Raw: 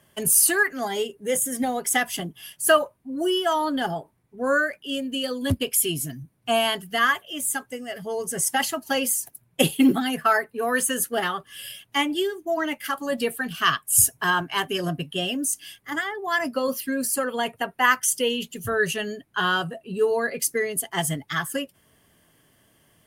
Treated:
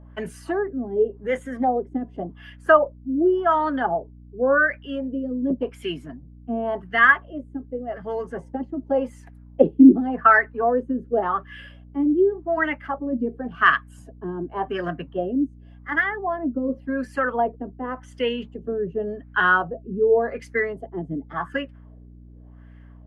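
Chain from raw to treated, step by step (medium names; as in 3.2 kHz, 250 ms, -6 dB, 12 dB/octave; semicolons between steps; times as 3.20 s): LFO low-pass sine 0.89 Hz 300–1900 Hz; steep high-pass 180 Hz; hum 60 Hz, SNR 22 dB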